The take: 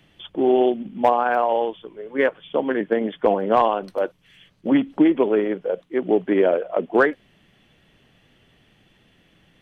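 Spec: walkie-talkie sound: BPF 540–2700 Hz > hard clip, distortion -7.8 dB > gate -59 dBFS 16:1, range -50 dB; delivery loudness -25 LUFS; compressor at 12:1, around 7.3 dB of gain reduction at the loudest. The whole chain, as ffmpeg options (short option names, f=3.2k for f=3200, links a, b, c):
-af "acompressor=threshold=-19dB:ratio=12,highpass=540,lowpass=2.7k,asoftclip=type=hard:threshold=-27dB,agate=range=-50dB:threshold=-59dB:ratio=16,volume=8.5dB"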